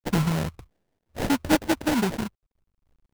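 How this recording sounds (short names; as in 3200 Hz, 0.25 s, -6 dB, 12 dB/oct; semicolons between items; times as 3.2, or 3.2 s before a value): a quantiser's noise floor 12-bit, dither none; phasing stages 6, 0.73 Hz, lowest notch 440–3100 Hz; aliases and images of a low sample rate 1200 Hz, jitter 20%; random-step tremolo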